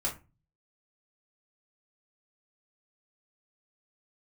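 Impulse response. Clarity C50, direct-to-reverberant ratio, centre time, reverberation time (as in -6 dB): 11.5 dB, -6.0 dB, 18 ms, 0.30 s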